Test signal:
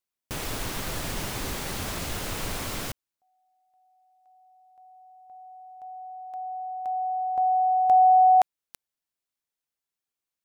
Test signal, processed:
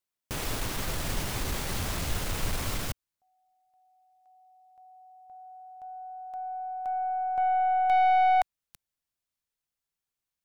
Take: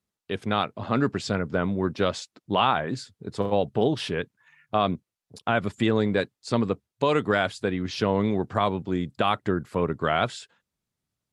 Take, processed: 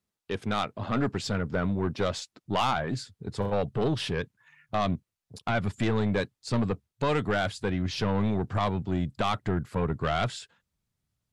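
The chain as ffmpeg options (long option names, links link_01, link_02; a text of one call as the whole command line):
ffmpeg -i in.wav -af "asubboost=boost=2:cutoff=180,aeval=exprs='(tanh(8.91*val(0)+0.25)-tanh(0.25))/8.91':channel_layout=same" out.wav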